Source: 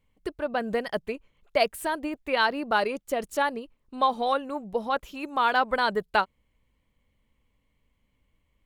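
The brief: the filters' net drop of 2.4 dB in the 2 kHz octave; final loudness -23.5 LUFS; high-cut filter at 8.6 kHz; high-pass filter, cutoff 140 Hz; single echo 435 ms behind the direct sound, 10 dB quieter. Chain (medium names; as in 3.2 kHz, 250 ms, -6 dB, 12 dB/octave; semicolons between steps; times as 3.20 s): high-pass 140 Hz; low-pass 8.6 kHz; peaking EQ 2 kHz -3.5 dB; delay 435 ms -10 dB; trim +4.5 dB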